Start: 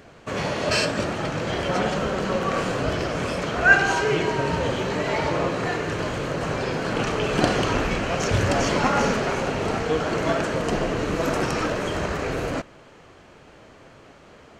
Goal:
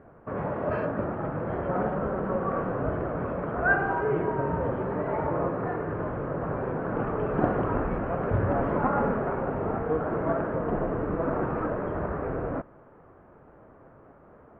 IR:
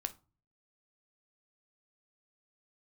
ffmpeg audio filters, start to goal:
-af "lowpass=frequency=1400:width=0.5412,lowpass=frequency=1400:width=1.3066,volume=-3.5dB"

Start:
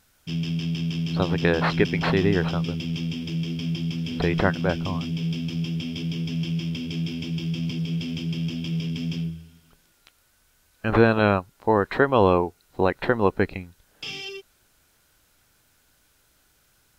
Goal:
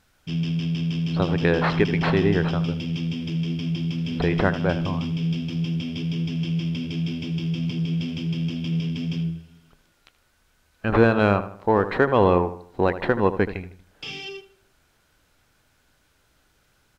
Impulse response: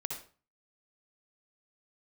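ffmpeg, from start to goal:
-filter_complex "[0:a]lowpass=frequency=3700:poles=1,asplit=2[link_01][link_02];[link_02]asoftclip=type=tanh:threshold=-18.5dB,volume=-9dB[link_03];[link_01][link_03]amix=inputs=2:normalize=0,asplit=2[link_04][link_05];[link_05]adelay=78,lowpass=frequency=2800:poles=1,volume=-12dB,asplit=2[link_06][link_07];[link_07]adelay=78,lowpass=frequency=2800:poles=1,volume=0.42,asplit=2[link_08][link_09];[link_09]adelay=78,lowpass=frequency=2800:poles=1,volume=0.42,asplit=2[link_10][link_11];[link_11]adelay=78,lowpass=frequency=2800:poles=1,volume=0.42[link_12];[link_04][link_06][link_08][link_10][link_12]amix=inputs=5:normalize=0,volume=-1dB"

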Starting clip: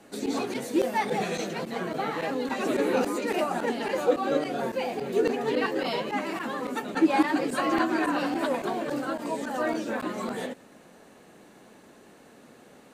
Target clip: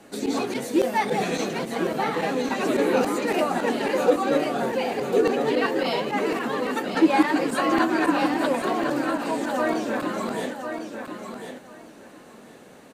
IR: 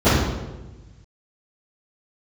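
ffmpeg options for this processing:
-af "aecho=1:1:1051|2102|3153:0.422|0.0759|0.0137,volume=3.5dB"

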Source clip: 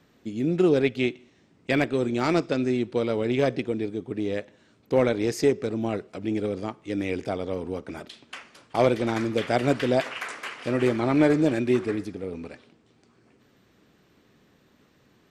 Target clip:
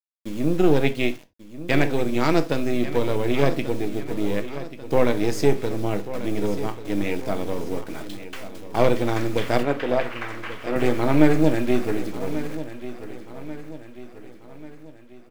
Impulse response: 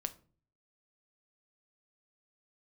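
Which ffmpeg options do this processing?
-filter_complex "[0:a]aeval=exprs='if(lt(val(0),0),0.447*val(0),val(0))':channel_layout=same,acrusher=bits=7:mix=0:aa=0.000001,asettb=1/sr,asplit=3[link_01][link_02][link_03];[link_01]atrim=end=9.634[link_04];[link_02]atrim=start=9.63:end=10.76,asetpts=PTS-STARTPTS,afade=type=in:duration=0.004:curve=qsin,afade=type=out:start_time=1.126:duration=0.004:curve=qsin,bass=frequency=250:gain=-12,treble=frequency=4000:gain=-15[link_05];[link_03]atrim=start=10.756[link_06];[link_04][link_05]acrossfade=duration=0.004:curve1=hsin:curve2=qsin[link_07];[link_07][link_06]acrossfade=duration=0.004:curve1=qsin:curve2=hsin,aecho=1:1:1139|2278|3417|4556|5695:0.211|0.101|0.0487|0.0234|0.0112[link_08];[1:a]atrim=start_sample=2205,atrim=end_sample=4410[link_09];[link_08][link_09]afir=irnorm=-1:irlink=0,volume=4.5dB"

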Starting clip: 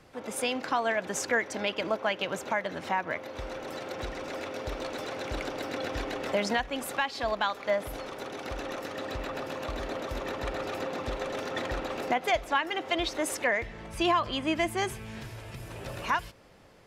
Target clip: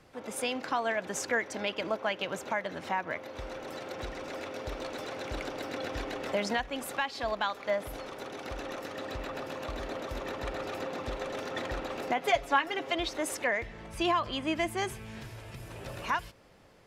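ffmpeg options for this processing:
ffmpeg -i in.wav -filter_complex "[0:a]asettb=1/sr,asplit=3[link_01][link_02][link_03];[link_01]atrim=end=12.174[link_04];[link_02]atrim=start=12.17:end=12.92,asetpts=PTS-STARTPTS,afade=type=in:duration=0.004:curve=qsin,afade=type=out:start_time=0.746:duration=0.004:curve=qsin,aecho=1:1:7.2:0.76,atrim=end_sample=33075[link_05];[link_03]atrim=start=12.916[link_06];[link_04][link_05]acrossfade=duration=0.004:curve1=hsin:curve2=qsin[link_07];[link_07][link_06]acrossfade=duration=0.004:curve1=qsin:curve2=hsin,volume=-2.5dB" out.wav

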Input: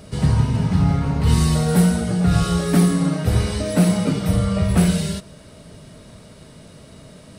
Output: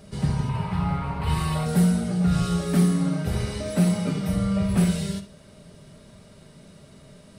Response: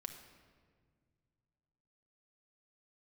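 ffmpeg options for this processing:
-filter_complex "[0:a]asettb=1/sr,asplit=3[link_01][link_02][link_03];[link_01]atrim=end=0.494[link_04];[link_02]atrim=start=0.49:end=1.66,asetpts=PTS-STARTPTS,afade=type=in:duration=0.004:curve=qsin,afade=type=out:start_time=1.166:duration=0.004:curve=qsin,equalizer=frequency=250:width_type=o:width=0.67:gain=-11,equalizer=frequency=1000:width_type=o:width=0.67:gain=10,equalizer=frequency=2500:width_type=o:width=0.67:gain=5,equalizer=frequency=6300:width_type=o:width=0.67:gain=-10[link_05];[link_03]atrim=start=1.656[link_06];[link_04][link_05]acrossfade=duration=0.004:curve1=hsin:curve2=qsin[link_07];[link_07][link_06]acrossfade=duration=0.004:curve1=qsin:curve2=hsin[link_08];[1:a]atrim=start_sample=2205,atrim=end_sample=3528[link_09];[link_08][link_09]afir=irnorm=-1:irlink=0,volume=-2.5dB"

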